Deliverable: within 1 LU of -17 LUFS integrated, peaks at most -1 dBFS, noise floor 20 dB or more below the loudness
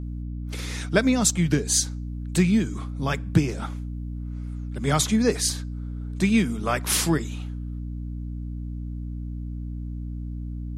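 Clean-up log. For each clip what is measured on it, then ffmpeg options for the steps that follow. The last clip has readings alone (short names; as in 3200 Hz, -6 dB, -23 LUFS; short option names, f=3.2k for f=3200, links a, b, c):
hum 60 Hz; harmonics up to 300 Hz; hum level -29 dBFS; loudness -26.0 LUFS; peak -3.5 dBFS; loudness target -17.0 LUFS
-> -af "bandreject=f=60:t=h:w=4,bandreject=f=120:t=h:w=4,bandreject=f=180:t=h:w=4,bandreject=f=240:t=h:w=4,bandreject=f=300:t=h:w=4"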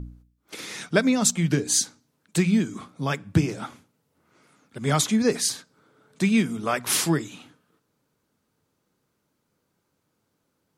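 hum none; loudness -24.0 LUFS; peak -4.0 dBFS; loudness target -17.0 LUFS
-> -af "volume=7dB,alimiter=limit=-1dB:level=0:latency=1"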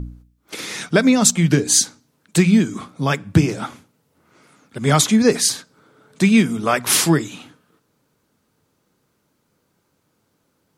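loudness -17.0 LUFS; peak -1.0 dBFS; noise floor -68 dBFS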